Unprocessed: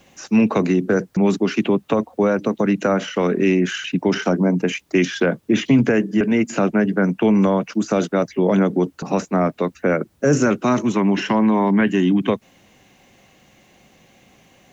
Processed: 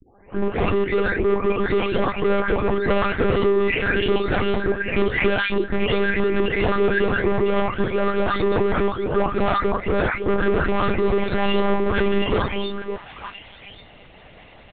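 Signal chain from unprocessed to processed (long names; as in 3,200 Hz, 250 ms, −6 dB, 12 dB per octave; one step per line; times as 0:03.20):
every frequency bin delayed by itself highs late, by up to 803 ms
low-shelf EQ 440 Hz −2.5 dB
comb filter 2.5 ms, depth 100%
automatic gain control gain up to 5.5 dB
in parallel at +0.5 dB: brickwall limiter −12 dBFS, peak gain reduction 9 dB
on the sum: hard clipping −13 dBFS, distortion −8 dB
echo through a band-pass that steps 281 ms, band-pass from 160 Hz, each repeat 1.4 octaves, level −2.5 dB
one-pitch LPC vocoder at 8 kHz 200 Hz
level −4.5 dB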